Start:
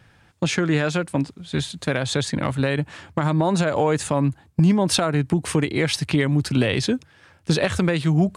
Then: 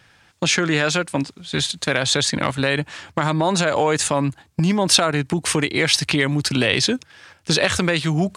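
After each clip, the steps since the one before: FFT filter 120 Hz 0 dB, 5.9 kHz +13 dB, 10 kHz +9 dB; in parallel at -1 dB: level held to a coarse grid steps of 23 dB; on the sum: trim -6 dB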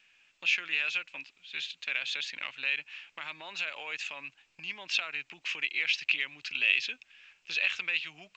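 band-pass filter 2.6 kHz, Q 7; A-law 128 kbps 16 kHz

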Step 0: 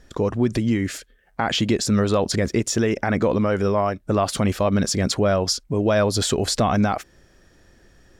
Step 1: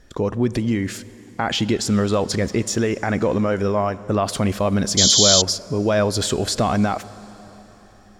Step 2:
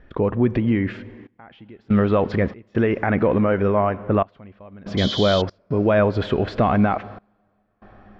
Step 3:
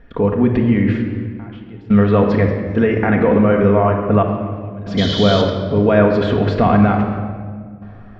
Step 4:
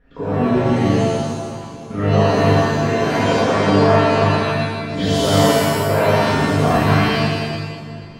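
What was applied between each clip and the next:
plate-style reverb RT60 4.2 s, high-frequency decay 0.9×, DRR 16 dB; painted sound noise, 4.97–5.42 s, 3–7.5 kHz -15 dBFS
low-pass 2.7 kHz 24 dB/octave; trance gate "xxxxxx...xxx.x" 71 bpm -24 dB; trim +1.5 dB
simulated room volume 2400 m³, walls mixed, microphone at 1.7 m; trim +2 dB
pitch-shifted reverb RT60 1.1 s, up +7 st, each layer -2 dB, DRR -9 dB; trim -13 dB

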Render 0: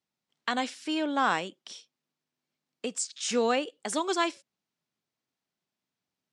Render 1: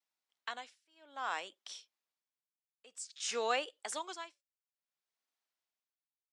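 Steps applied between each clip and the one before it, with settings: high-pass 640 Hz 12 dB/octave; vibrato 1.4 Hz 47 cents; tremolo 0.56 Hz, depth 98%; trim -3 dB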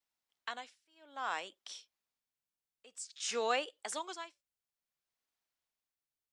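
bass shelf 160 Hz +8.5 dB

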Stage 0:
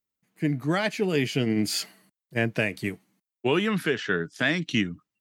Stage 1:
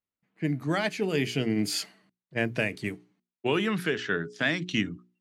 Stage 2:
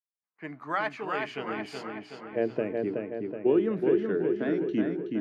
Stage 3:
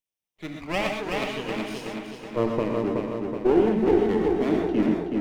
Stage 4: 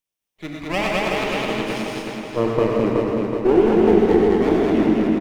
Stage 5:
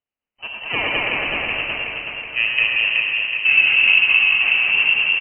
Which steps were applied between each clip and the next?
level-controlled noise filter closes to 2.9 kHz, open at -22.5 dBFS; hum notches 60/120/180/240/300/360/420 Hz; trim -2 dB
band-pass sweep 1.1 kHz -> 360 Hz, 1.35–2.69 s; gate with hold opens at -58 dBFS; filtered feedback delay 373 ms, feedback 57%, low-pass 3.8 kHz, level -3.5 dB; trim +6.5 dB
comb filter that takes the minimum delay 0.33 ms; gated-style reverb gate 150 ms rising, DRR 3 dB; trim +3.5 dB
loudspeakers at several distances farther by 34 m -7 dB, 72 m -1 dB; trim +3.5 dB
frequency inversion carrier 3 kHz

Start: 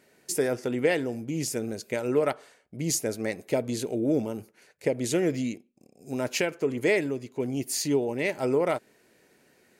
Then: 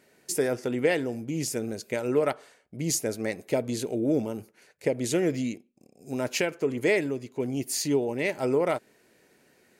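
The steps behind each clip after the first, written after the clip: no audible change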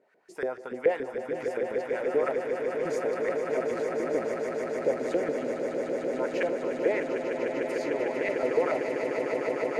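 LFO band-pass saw up 7 Hz 440–1800 Hz; echo with a slow build-up 150 ms, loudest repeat 8, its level -8 dB; trim +3 dB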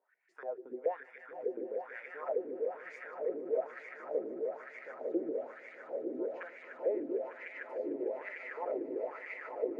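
wah-wah 1.1 Hz 310–2200 Hz, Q 5.3

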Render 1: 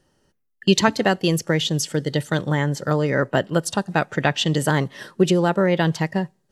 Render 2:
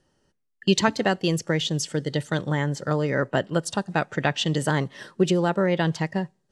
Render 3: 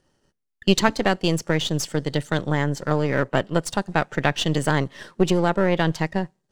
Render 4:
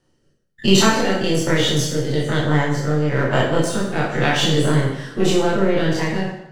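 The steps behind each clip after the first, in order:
low-pass 9.9 kHz 24 dB/octave; trim -3.5 dB
partial rectifier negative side -7 dB; trim +3.5 dB
every event in the spectrogram widened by 60 ms; rotary cabinet horn 1.1 Hz; plate-style reverb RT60 0.85 s, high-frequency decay 0.85×, DRR -1.5 dB; trim -2 dB

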